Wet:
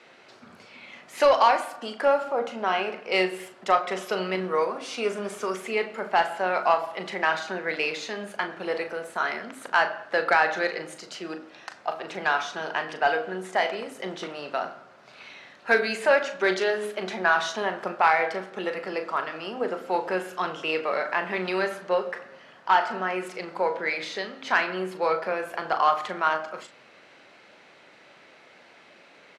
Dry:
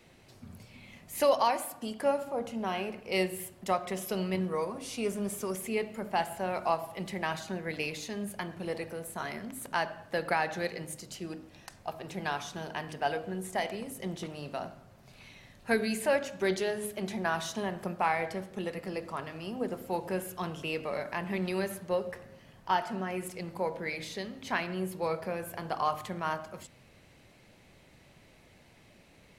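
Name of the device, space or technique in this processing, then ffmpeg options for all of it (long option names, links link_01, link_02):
intercom: -filter_complex "[0:a]highpass=390,lowpass=4800,equalizer=frequency=1400:width_type=o:width=0.48:gain=7,asoftclip=type=tanh:threshold=-17dB,asplit=2[link_01][link_02];[link_02]adelay=38,volume=-10dB[link_03];[link_01][link_03]amix=inputs=2:normalize=0,volume=8dB"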